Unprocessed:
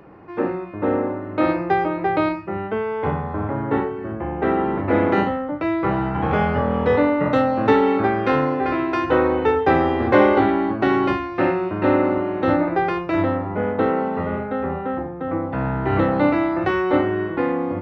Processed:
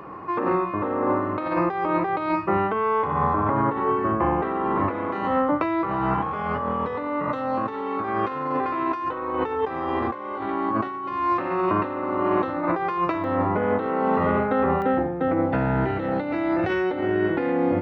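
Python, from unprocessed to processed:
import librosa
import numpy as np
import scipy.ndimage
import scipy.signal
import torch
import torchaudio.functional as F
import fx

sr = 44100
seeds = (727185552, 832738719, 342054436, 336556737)

y = fx.peak_eq(x, sr, hz=1100.0, db=fx.steps((0.0, 15.0), (13.24, 7.5), (14.82, -9.0)), octaves=0.27)
y = fx.over_compress(y, sr, threshold_db=-24.0, ratio=-1.0)
y = fx.low_shelf(y, sr, hz=140.0, db=-5.5)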